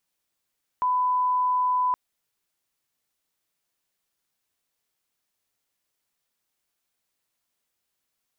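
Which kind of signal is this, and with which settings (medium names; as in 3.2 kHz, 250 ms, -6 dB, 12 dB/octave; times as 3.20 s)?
line-up tone -20 dBFS 1.12 s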